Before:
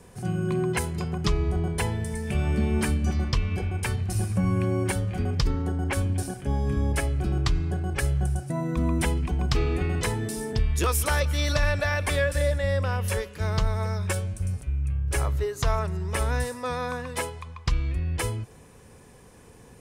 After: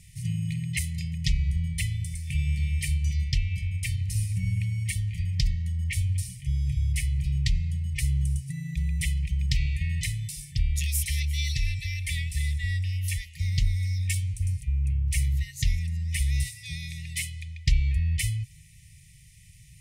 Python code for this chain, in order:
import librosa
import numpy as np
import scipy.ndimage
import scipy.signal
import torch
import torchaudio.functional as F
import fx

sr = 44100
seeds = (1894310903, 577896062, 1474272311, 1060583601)

y = fx.rider(x, sr, range_db=10, speed_s=2.0)
y = fx.brickwall_bandstop(y, sr, low_hz=170.0, high_hz=1800.0)